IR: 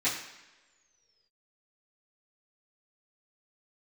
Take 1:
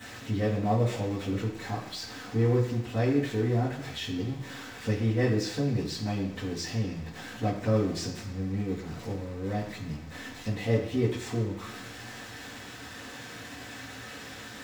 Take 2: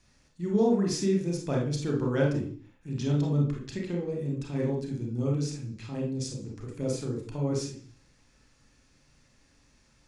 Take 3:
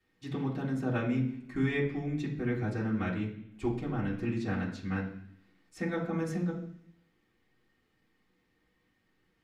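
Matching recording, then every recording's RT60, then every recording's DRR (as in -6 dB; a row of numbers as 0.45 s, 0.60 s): 1; no single decay rate, 0.50 s, 0.70 s; -13.5 dB, -1.0 dB, -8.5 dB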